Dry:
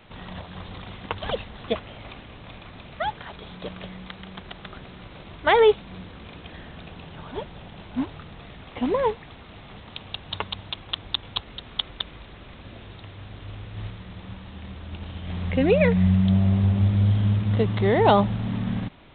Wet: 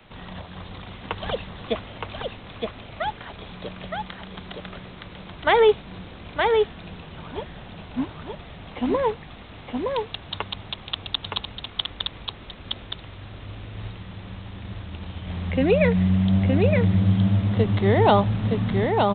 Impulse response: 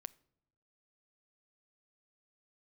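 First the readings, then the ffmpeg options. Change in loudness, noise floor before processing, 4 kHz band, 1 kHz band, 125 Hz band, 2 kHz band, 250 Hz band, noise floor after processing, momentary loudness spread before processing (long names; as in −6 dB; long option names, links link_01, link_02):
0.0 dB, −45 dBFS, +1.5 dB, +1.5 dB, +0.5 dB, +1.5 dB, +1.5 dB, −43 dBFS, 23 LU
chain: -filter_complex "[0:a]acrossover=split=100|410|870[link_01][link_02][link_03][link_04];[link_01]asoftclip=type=hard:threshold=-28.5dB[link_05];[link_05][link_02][link_03][link_04]amix=inputs=4:normalize=0,aecho=1:1:917:0.668"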